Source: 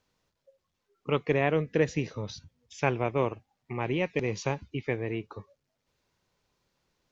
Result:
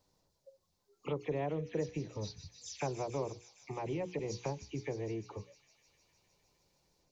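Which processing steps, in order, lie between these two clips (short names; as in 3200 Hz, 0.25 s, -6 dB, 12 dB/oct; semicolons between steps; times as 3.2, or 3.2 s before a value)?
spectral delay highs early, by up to 0.102 s; compressor 2:1, threshold -43 dBFS, peak gain reduction 13 dB; band shelf 2000 Hz -9.5 dB; notches 60/120/180/240/300/360/420/480 Hz; on a send: thin delay 0.153 s, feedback 80%, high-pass 3800 Hz, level -6 dB; on the sum: gain +2.5 dB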